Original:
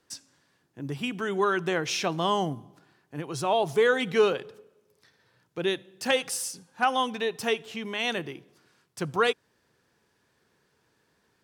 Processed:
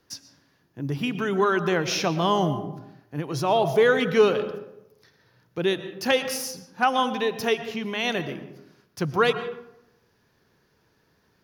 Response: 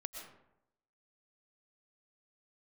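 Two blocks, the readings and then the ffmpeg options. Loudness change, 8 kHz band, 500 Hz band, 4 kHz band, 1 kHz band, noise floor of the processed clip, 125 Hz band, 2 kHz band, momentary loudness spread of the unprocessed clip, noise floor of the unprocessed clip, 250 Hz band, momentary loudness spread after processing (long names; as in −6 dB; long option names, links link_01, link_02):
+3.0 dB, 0.0 dB, +4.0 dB, +2.0 dB, +3.0 dB, −66 dBFS, +7.0 dB, +2.5 dB, 17 LU, −71 dBFS, +5.5 dB, 17 LU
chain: -filter_complex "[0:a]aexciter=amount=1.3:drive=0.8:freq=4600,asplit=2[link_01][link_02];[1:a]atrim=start_sample=2205,lowshelf=frequency=240:gain=11,highshelf=frequency=5700:gain=-11[link_03];[link_02][link_03]afir=irnorm=-1:irlink=0,volume=0dB[link_04];[link_01][link_04]amix=inputs=2:normalize=0,volume=-1.5dB"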